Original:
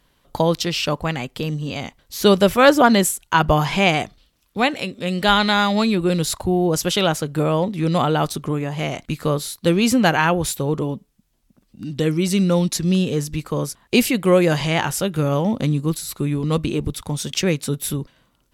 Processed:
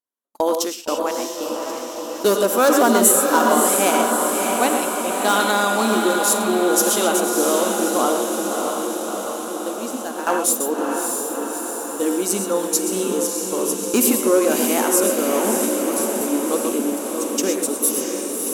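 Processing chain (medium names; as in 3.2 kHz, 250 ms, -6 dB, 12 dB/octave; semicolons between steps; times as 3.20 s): gated-style reverb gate 150 ms rising, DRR 5.5 dB; hard clipper -9 dBFS, distortion -17 dB; brick-wall FIR high-pass 210 Hz; high-order bell 3 kHz -9.5 dB; 8.12–10.27 s: compression 4:1, threshold -26 dBFS, peak gain reduction 11.5 dB; gate -26 dBFS, range -32 dB; treble shelf 4.6 kHz +11 dB; echo that smears into a reverb 624 ms, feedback 68%, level -4 dB; trim -1 dB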